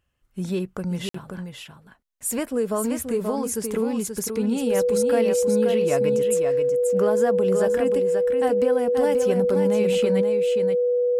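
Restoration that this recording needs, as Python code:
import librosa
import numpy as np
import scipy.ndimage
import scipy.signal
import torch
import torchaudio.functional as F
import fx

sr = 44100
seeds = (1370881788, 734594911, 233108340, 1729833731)

y = fx.notch(x, sr, hz=490.0, q=30.0)
y = fx.fix_interpolate(y, sr, at_s=(1.09,), length_ms=54.0)
y = fx.fix_echo_inverse(y, sr, delay_ms=531, level_db=-6.0)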